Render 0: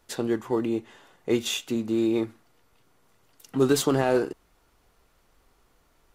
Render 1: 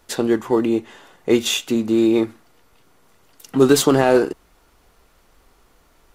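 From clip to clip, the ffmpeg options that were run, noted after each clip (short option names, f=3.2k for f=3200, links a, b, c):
-af "equalizer=f=120:t=o:w=0.35:g=-5,volume=8dB"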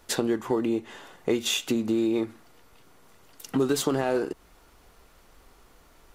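-af "acompressor=threshold=-23dB:ratio=4"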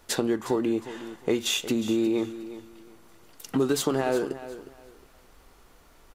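-af "aecho=1:1:360|720|1080:0.2|0.0479|0.0115"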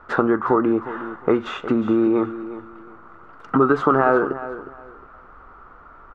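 -af "lowpass=f=1.3k:t=q:w=6.6,volume=6dB"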